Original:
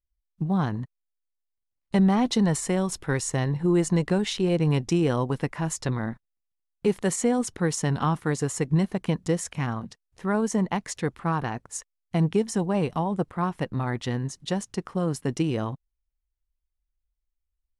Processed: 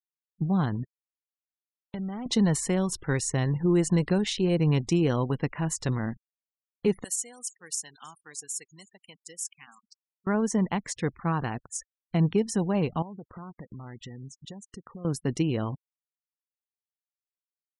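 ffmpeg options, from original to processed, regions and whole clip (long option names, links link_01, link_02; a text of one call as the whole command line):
ffmpeg -i in.wav -filter_complex "[0:a]asettb=1/sr,asplit=3[link_01][link_02][link_03];[link_01]atrim=end=0.834[link_04];[link_02]atrim=start=0.83:end=2.26,asetpts=PTS-STARTPTS,afade=type=in:duration=0.004:curve=qsin,afade=type=out:start_time=1.426:duration=0.004:curve=qsin,aeval=exprs='sgn(val(0))*max(abs(val(0))-0.0141,0)':channel_layout=same,acompressor=threshold=-34dB:ratio=3:attack=3.2:release=140:knee=1:detection=peak[link_05];[link_03]atrim=start=2.256[link_06];[link_04][link_05]acrossfade=duration=0.004:curve1=hsin:curve2=qsin[link_07];[link_07][link_06]acrossfade=duration=0.004:curve1=qsin:curve2=hsin,asettb=1/sr,asplit=3[link_08][link_09][link_10];[link_08]atrim=end=7.044[link_11];[link_09]atrim=start=7.04:end=10.27,asetpts=PTS-STARTPTS,afade=type=in:duration=0.004:curve=qsin,afade=type=out:start_time=3.226:duration=0.004:curve=qsin,aderivative,asplit=6[link_12][link_13][link_14][link_15][link_16][link_17];[link_13]adelay=311,afreqshift=-52,volume=-20.5dB[link_18];[link_14]adelay=622,afreqshift=-104,volume=-25.2dB[link_19];[link_15]adelay=933,afreqshift=-156,volume=-30dB[link_20];[link_16]adelay=1244,afreqshift=-208,volume=-34.7dB[link_21];[link_17]adelay=1555,afreqshift=-260,volume=-39.4dB[link_22];[link_12][link_18][link_19][link_20][link_21][link_22]amix=inputs=6:normalize=0,atrim=end_sample=142443[link_23];[link_10]atrim=start=10.266[link_24];[link_11][link_23]acrossfade=duration=0.004:curve1=hsin:curve2=qsin[link_25];[link_25][link_24]acrossfade=duration=0.004:curve1=qsin:curve2=hsin,asettb=1/sr,asplit=3[link_26][link_27][link_28];[link_26]atrim=end=13.024[link_29];[link_27]atrim=start=13.02:end=15.05,asetpts=PTS-STARTPTS,afade=type=in:duration=0.004:curve=qsin,afade=type=out:start_time=2.026:duration=0.004:curve=qsin,equalizer=frequency=4400:width_type=o:width=0.85:gain=-6.5,acompressor=threshold=-38dB:ratio=6:attack=3.2:release=140:knee=1:detection=peak,aeval=exprs='val(0)*gte(abs(val(0)),0.00188)':channel_layout=same[link_30];[link_28]atrim=start=15.046[link_31];[link_29][link_30]acrossfade=duration=0.004:curve1=hsin:curve2=qsin[link_32];[link_32][link_31]acrossfade=duration=0.004:curve1=qsin:curve2=hsin,afftfilt=real='re*gte(hypot(re,im),0.00708)':imag='im*gte(hypot(re,im),0.00708)':win_size=1024:overlap=0.75,equalizer=frequency=860:width_type=o:width=2.4:gain=-3" out.wav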